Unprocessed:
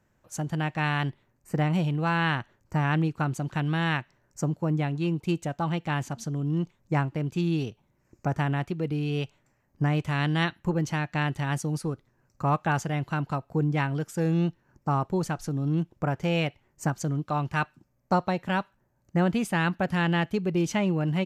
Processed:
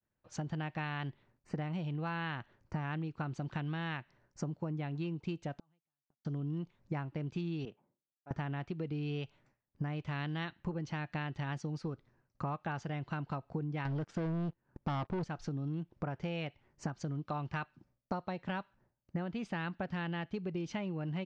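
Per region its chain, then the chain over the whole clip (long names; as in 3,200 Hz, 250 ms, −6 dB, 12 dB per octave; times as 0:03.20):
0:05.55–0:06.25: downward compressor 10 to 1, threshold −32 dBFS + gate with flip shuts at −32 dBFS, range −37 dB
0:07.65–0:08.31: low-pass that shuts in the quiet parts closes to 510 Hz, open at −27 dBFS + volume swells 445 ms + high-pass filter 230 Hz
0:13.85–0:15.24: high-shelf EQ 3,000 Hz −10 dB + leveller curve on the samples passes 3
whole clip: downward expander −58 dBFS; low-pass filter 5,200 Hz 24 dB per octave; downward compressor 10 to 1, threshold −32 dBFS; level −2 dB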